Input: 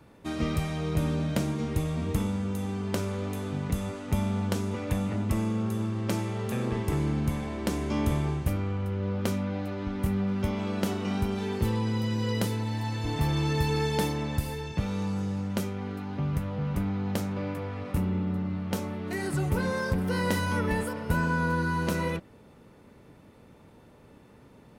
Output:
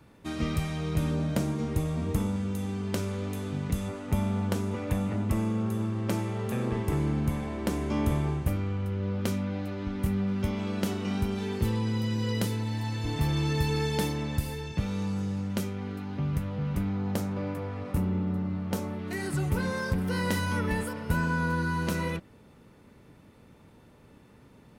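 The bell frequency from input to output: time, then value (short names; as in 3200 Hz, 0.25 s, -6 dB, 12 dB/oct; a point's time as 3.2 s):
bell -3.5 dB 1.8 oct
580 Hz
from 1.11 s 3000 Hz
from 2.36 s 830 Hz
from 3.88 s 4900 Hz
from 8.53 s 790 Hz
from 16.93 s 2900 Hz
from 18.99 s 590 Hz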